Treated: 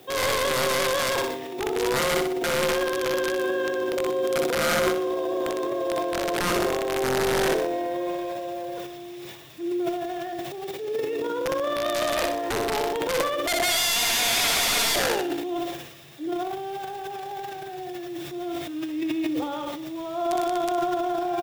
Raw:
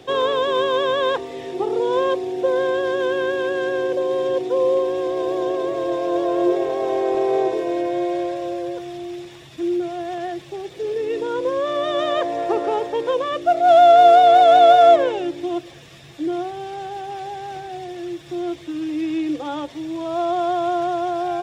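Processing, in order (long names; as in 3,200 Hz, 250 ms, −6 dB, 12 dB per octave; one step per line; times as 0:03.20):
low-shelf EQ 83 Hz −9.5 dB
wrap-around overflow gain 13.5 dB
downsampling to 32,000 Hz
background noise violet −52 dBFS
on a send: flutter between parallel walls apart 10.6 metres, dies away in 0.6 s
on the sum: transient designer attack −3 dB, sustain +11 dB
level −5.5 dB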